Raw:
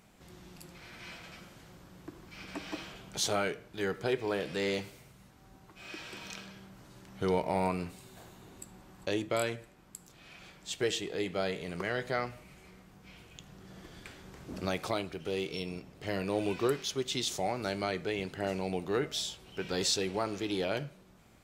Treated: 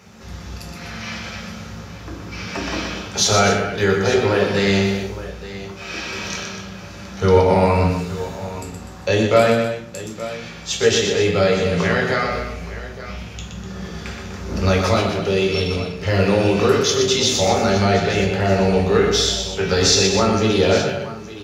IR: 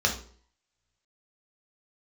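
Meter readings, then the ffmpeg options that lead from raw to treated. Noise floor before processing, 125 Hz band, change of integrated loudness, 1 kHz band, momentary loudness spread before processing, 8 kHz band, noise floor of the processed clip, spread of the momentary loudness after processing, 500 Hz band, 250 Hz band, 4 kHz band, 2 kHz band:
−59 dBFS, +20.5 dB, +16.0 dB, +15.5 dB, 20 LU, +16.5 dB, −35 dBFS, 17 LU, +16.5 dB, +16.0 dB, +16.0 dB, +16.0 dB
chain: -filter_complex "[0:a]asplit=2[link_01][link_02];[link_02]alimiter=level_in=1dB:limit=-24dB:level=0:latency=1,volume=-1dB,volume=-0.5dB[link_03];[link_01][link_03]amix=inputs=2:normalize=0,aecho=1:1:121|248|869:0.501|0.282|0.188[link_04];[1:a]atrim=start_sample=2205[link_05];[link_04][link_05]afir=irnorm=-1:irlink=0,volume=-1dB"

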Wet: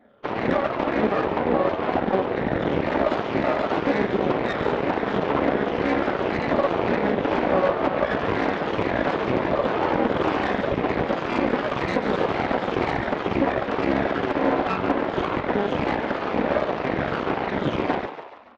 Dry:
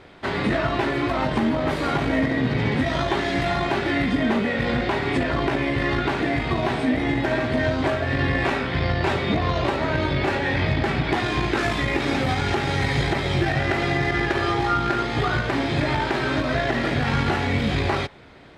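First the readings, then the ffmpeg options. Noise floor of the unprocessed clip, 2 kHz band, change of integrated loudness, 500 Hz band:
−27 dBFS, −4.0 dB, −1.0 dB, +3.0 dB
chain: -filter_complex "[0:a]afftfilt=real='re*pow(10,14/40*sin(2*PI*(0.77*log(max(b,1)*sr/1024/100)/log(2)-(-2)*(pts-256)/sr)))':imag='im*pow(10,14/40*sin(2*PI*(0.77*log(max(b,1)*sr/1024/100)/log(2)-(-2)*(pts-256)/sr)))':win_size=1024:overlap=0.75,aecho=1:1:6.2:0.46,dynaudnorm=framelen=870:gausssize=9:maxgain=10dB,alimiter=limit=-9.5dB:level=0:latency=1:release=363,afreqshift=-72,aresample=8000,acrusher=bits=4:mode=log:mix=0:aa=0.000001,aresample=44100,aeval=exprs='0.501*(cos(1*acos(clip(val(0)/0.501,-1,1)))-cos(1*PI/2))+0.00316*(cos(3*acos(clip(val(0)/0.501,-1,1)))-cos(3*PI/2))+0.00708*(cos(4*acos(clip(val(0)/0.501,-1,1)))-cos(4*PI/2))+0.224*(cos(6*acos(clip(val(0)/0.501,-1,1)))-cos(6*PI/2))+0.0355*(cos(7*acos(clip(val(0)/0.501,-1,1)))-cos(7*PI/2))':channel_layout=same,bandpass=frequency=440:width_type=q:width=0.74:csg=0,asplit=2[link_01][link_02];[link_02]asplit=5[link_03][link_04][link_05][link_06][link_07];[link_03]adelay=143,afreqshift=93,volume=-10.5dB[link_08];[link_04]adelay=286,afreqshift=186,volume=-16.7dB[link_09];[link_05]adelay=429,afreqshift=279,volume=-22.9dB[link_10];[link_06]adelay=572,afreqshift=372,volume=-29.1dB[link_11];[link_07]adelay=715,afreqshift=465,volume=-35.3dB[link_12];[link_08][link_09][link_10][link_11][link_12]amix=inputs=5:normalize=0[link_13];[link_01][link_13]amix=inputs=2:normalize=0,volume=-2.5dB"

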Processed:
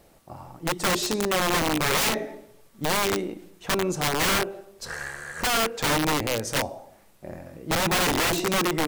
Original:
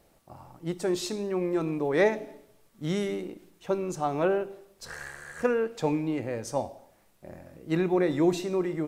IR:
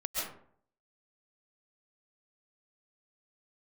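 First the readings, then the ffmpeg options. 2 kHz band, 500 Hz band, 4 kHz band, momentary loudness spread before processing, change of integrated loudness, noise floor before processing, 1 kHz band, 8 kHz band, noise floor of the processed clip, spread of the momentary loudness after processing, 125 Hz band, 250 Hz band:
+10.5 dB, −1.0 dB, +16.0 dB, 17 LU, +4.0 dB, −63 dBFS, +8.5 dB, +15.5 dB, −56 dBFS, 17 LU, +3.0 dB, −0.5 dB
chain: -filter_complex "[0:a]asplit=2[link_01][link_02];[1:a]atrim=start_sample=2205,lowshelf=frequency=140:gain=-5.5[link_03];[link_02][link_03]afir=irnorm=-1:irlink=0,volume=-24.5dB[link_04];[link_01][link_04]amix=inputs=2:normalize=0,aeval=exprs='(mod(15.8*val(0)+1,2)-1)/15.8':channel_layout=same,volume=6dB"

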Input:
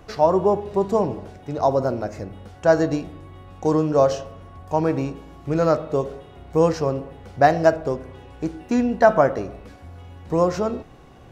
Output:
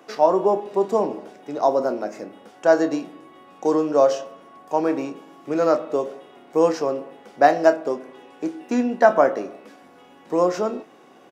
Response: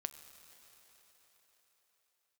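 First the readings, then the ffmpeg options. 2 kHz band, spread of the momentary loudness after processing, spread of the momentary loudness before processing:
+0.5 dB, 16 LU, 17 LU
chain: -filter_complex "[0:a]highpass=frequency=230:width=0.5412,highpass=frequency=230:width=1.3066,bandreject=frequency=4200:width=18,asplit=2[link_01][link_02];[link_02]adelay=28,volume=-12dB[link_03];[link_01][link_03]amix=inputs=2:normalize=0"

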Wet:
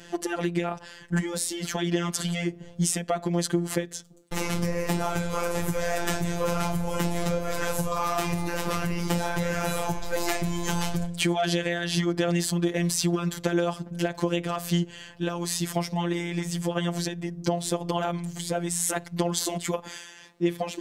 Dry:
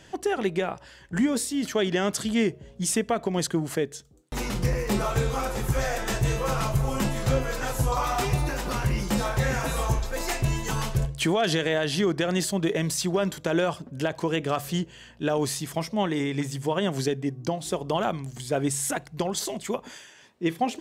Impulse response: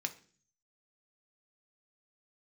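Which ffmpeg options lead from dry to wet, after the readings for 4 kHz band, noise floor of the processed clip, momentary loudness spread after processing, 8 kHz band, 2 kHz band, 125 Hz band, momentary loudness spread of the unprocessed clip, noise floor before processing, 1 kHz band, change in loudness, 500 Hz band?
−0.5 dB, −48 dBFS, 6 LU, +1.0 dB, −1.0 dB, −1.0 dB, 6 LU, −51 dBFS, −1.5 dB, −1.0 dB, −2.0 dB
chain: -af "acompressor=threshold=-27dB:ratio=6,afftfilt=real='hypot(re,im)*cos(PI*b)':imag='0':win_size=1024:overlap=0.75,volume=7.5dB"

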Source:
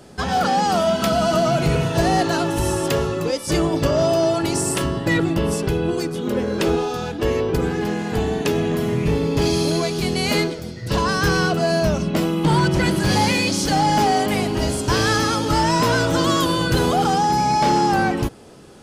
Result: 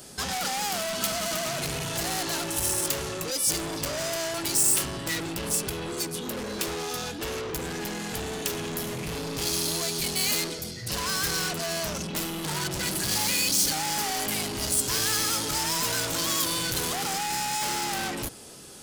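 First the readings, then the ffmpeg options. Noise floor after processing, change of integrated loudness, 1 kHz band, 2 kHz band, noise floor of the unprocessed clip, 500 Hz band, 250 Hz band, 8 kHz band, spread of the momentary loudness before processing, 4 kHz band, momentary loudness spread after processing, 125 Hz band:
−37 dBFS, −7.0 dB, −13.0 dB, −7.5 dB, −32 dBFS, −14.0 dB, −14.5 dB, +3.5 dB, 5 LU, −2.5 dB, 9 LU, −15.0 dB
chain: -af "asoftclip=type=tanh:threshold=-26dB,crystalizer=i=5.5:c=0,volume=-6dB"

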